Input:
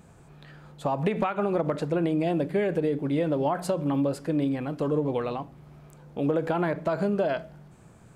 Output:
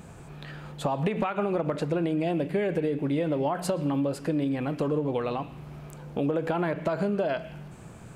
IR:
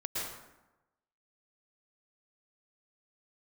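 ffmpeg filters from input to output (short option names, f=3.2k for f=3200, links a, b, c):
-filter_complex "[0:a]acompressor=threshold=-35dB:ratio=2.5,asplit=2[a][b];[b]bandpass=f=2.7k:t=q:w=3.5:csg=0[c];[1:a]atrim=start_sample=2205[d];[c][d]afir=irnorm=-1:irlink=0,volume=-7.5dB[e];[a][e]amix=inputs=2:normalize=0,volume=7dB"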